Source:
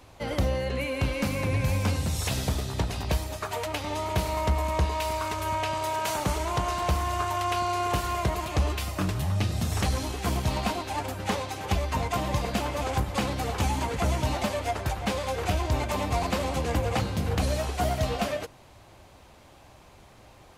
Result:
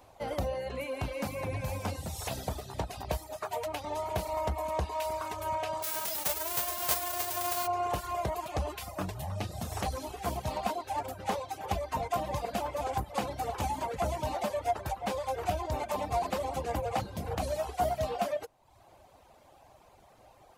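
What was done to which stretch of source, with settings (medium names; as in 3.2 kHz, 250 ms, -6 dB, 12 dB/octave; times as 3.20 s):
5.82–7.66 s: formants flattened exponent 0.1
whole clip: treble shelf 10 kHz +9 dB; reverb removal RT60 0.74 s; peaking EQ 710 Hz +10 dB 1.3 oct; trim -9 dB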